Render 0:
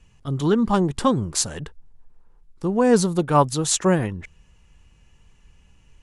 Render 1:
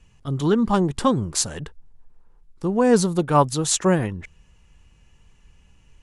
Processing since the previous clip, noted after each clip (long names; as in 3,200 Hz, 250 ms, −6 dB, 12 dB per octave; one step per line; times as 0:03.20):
no processing that can be heard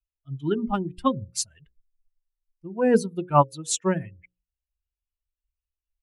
spectral dynamics exaggerated over time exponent 2
mains-hum notches 60/120/180/240/300/360/420/480/540 Hz
expander for the loud parts 1.5 to 1, over −36 dBFS
level +1.5 dB